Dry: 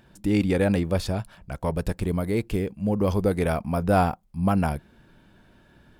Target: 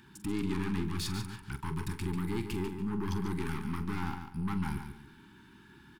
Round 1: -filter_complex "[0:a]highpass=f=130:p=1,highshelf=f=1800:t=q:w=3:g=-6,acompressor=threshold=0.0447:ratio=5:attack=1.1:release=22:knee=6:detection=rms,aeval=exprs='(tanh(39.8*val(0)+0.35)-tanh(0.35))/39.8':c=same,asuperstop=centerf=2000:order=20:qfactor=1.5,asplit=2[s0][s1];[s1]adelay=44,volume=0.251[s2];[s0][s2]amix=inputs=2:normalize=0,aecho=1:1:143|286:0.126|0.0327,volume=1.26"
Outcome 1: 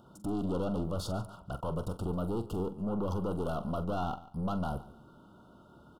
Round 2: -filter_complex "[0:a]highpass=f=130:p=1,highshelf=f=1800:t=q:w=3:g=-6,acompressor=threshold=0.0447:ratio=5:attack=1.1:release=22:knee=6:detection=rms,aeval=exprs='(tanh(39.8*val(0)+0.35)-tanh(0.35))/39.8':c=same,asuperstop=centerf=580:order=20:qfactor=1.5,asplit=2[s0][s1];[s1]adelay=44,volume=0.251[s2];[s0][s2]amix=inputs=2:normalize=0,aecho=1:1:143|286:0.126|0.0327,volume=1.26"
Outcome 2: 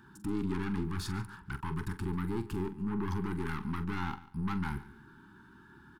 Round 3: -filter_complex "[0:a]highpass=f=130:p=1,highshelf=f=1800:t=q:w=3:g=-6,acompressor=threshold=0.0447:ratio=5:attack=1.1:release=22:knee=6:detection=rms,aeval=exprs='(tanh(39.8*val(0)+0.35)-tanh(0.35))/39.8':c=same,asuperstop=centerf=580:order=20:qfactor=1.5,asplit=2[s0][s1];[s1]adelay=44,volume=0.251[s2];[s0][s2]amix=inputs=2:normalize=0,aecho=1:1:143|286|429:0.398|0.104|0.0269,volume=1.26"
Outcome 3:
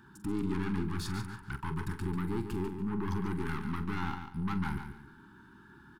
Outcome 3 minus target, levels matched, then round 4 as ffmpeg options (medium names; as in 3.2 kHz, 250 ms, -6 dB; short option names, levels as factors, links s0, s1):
4 kHz band -4.5 dB
-filter_complex "[0:a]highpass=f=130:p=1,acompressor=threshold=0.0447:ratio=5:attack=1.1:release=22:knee=6:detection=rms,aeval=exprs='(tanh(39.8*val(0)+0.35)-tanh(0.35))/39.8':c=same,asuperstop=centerf=580:order=20:qfactor=1.5,asplit=2[s0][s1];[s1]adelay=44,volume=0.251[s2];[s0][s2]amix=inputs=2:normalize=0,aecho=1:1:143|286|429:0.398|0.104|0.0269,volume=1.26"